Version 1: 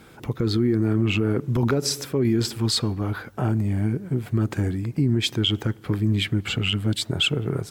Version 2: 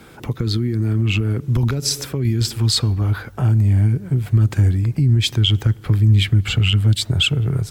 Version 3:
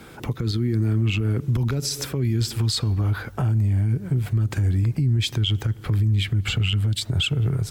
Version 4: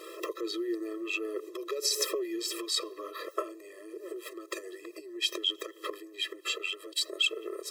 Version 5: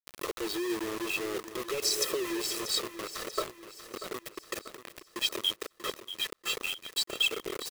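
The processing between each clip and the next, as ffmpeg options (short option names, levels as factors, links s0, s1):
-filter_complex "[0:a]asubboost=boost=4:cutoff=110,acrossover=split=200|2300[s0][s1][s2];[s1]acompressor=threshold=0.0224:ratio=6[s3];[s0][s3][s2]amix=inputs=3:normalize=0,volume=1.78"
-af "alimiter=limit=0.178:level=0:latency=1:release=111"
-af "acompressor=threshold=0.0631:ratio=6,afftfilt=real='re*eq(mod(floor(b*sr/1024/340),2),1)':imag='im*eq(mod(floor(b*sr/1024/340),2),1)':win_size=1024:overlap=0.75,volume=1.58"
-af "acrusher=bits=5:mix=0:aa=0.000001,aecho=1:1:638|1276|1914|2552|3190:0.251|0.118|0.0555|0.0261|0.0123"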